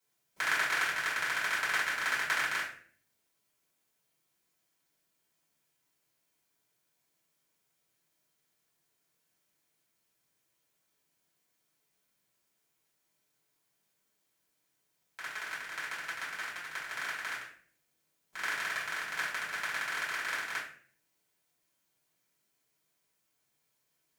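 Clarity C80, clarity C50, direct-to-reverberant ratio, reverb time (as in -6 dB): 9.5 dB, 5.0 dB, -8.5 dB, 0.50 s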